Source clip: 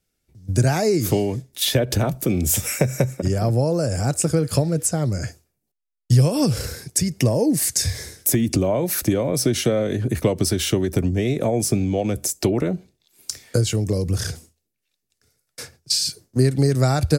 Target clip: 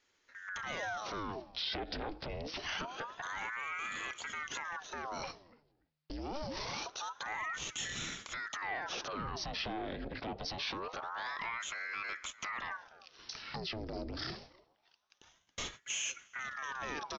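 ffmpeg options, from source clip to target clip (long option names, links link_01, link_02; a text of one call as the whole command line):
ffmpeg -i in.wav -filter_complex "[0:a]acompressor=threshold=-32dB:ratio=6,aresample=11025,asoftclip=type=tanh:threshold=-29.5dB,aresample=44100,lowshelf=frequency=120:gain=-8.5,asplit=2[link_01][link_02];[link_02]adelay=290,lowpass=frequency=1300:poles=1,volume=-22.5dB,asplit=2[link_03][link_04];[link_04]adelay=290,lowpass=frequency=1300:poles=1,volume=0.21[link_05];[link_01][link_03][link_05]amix=inputs=3:normalize=0,alimiter=level_in=12.5dB:limit=-24dB:level=0:latency=1:release=13,volume=-12.5dB,lowshelf=frequency=420:gain=-8,aeval=exprs='val(0)*sin(2*PI*1000*n/s+1000*0.85/0.25*sin(2*PI*0.25*n/s))':channel_layout=same,volume=10dB" out.wav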